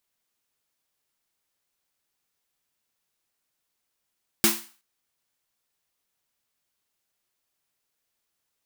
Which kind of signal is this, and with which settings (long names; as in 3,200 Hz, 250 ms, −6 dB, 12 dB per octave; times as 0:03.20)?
synth snare length 0.37 s, tones 220 Hz, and 340 Hz, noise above 790 Hz, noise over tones 4.5 dB, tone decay 0.29 s, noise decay 0.39 s